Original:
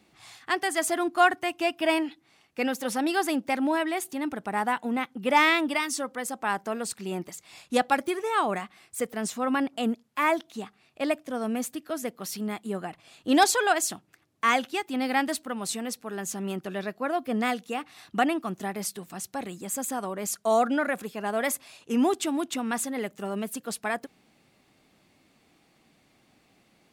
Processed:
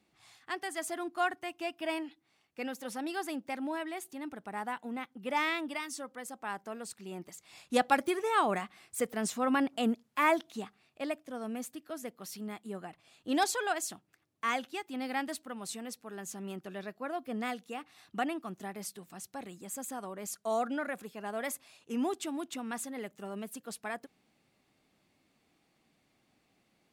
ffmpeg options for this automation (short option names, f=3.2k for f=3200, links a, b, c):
-af "volume=-2.5dB,afade=t=in:st=7.15:d=0.79:silence=0.398107,afade=t=out:st=10.5:d=0.59:silence=0.473151"